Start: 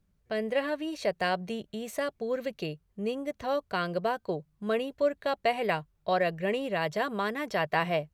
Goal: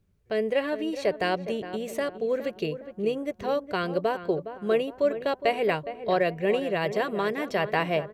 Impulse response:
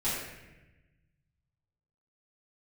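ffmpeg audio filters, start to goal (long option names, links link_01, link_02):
-filter_complex "[0:a]equalizer=frequency=100:width_type=o:width=0.67:gain=8,equalizer=frequency=400:width_type=o:width=0.67:gain=8,equalizer=frequency=2500:width_type=o:width=0.67:gain=3,asplit=2[link_01][link_02];[link_02]adelay=413,lowpass=frequency=1500:poles=1,volume=-11dB,asplit=2[link_03][link_04];[link_04]adelay=413,lowpass=frequency=1500:poles=1,volume=0.46,asplit=2[link_05][link_06];[link_06]adelay=413,lowpass=frequency=1500:poles=1,volume=0.46,asplit=2[link_07][link_08];[link_08]adelay=413,lowpass=frequency=1500:poles=1,volume=0.46,asplit=2[link_09][link_10];[link_10]adelay=413,lowpass=frequency=1500:poles=1,volume=0.46[link_11];[link_01][link_03][link_05][link_07][link_09][link_11]amix=inputs=6:normalize=0"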